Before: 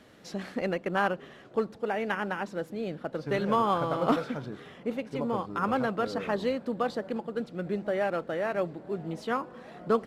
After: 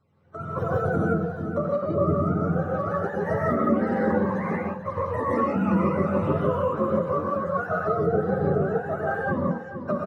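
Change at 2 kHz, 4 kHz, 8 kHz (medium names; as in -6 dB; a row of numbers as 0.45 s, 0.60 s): +2.5 dB, under -10 dB, no reading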